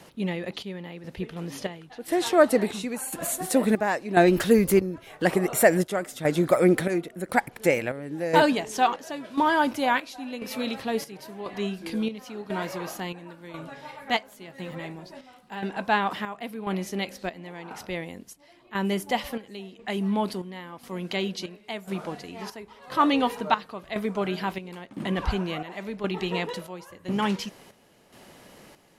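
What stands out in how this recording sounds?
chopped level 0.96 Hz, depth 65%, duty 60%

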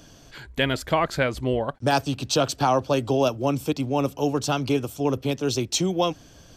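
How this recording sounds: noise floor -50 dBFS; spectral tilt -5.0 dB/octave

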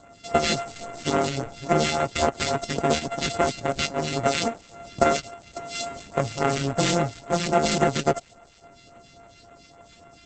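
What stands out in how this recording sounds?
a buzz of ramps at a fixed pitch in blocks of 64 samples; phasing stages 2, 3.6 Hz, lowest notch 770–4700 Hz; Opus

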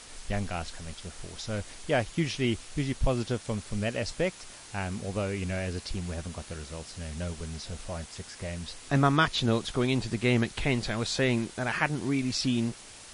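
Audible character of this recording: a quantiser's noise floor 8-bit, dither triangular; MP3

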